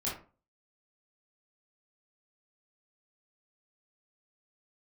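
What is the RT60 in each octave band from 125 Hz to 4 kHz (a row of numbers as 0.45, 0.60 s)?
0.40, 0.40, 0.35, 0.35, 0.30, 0.20 s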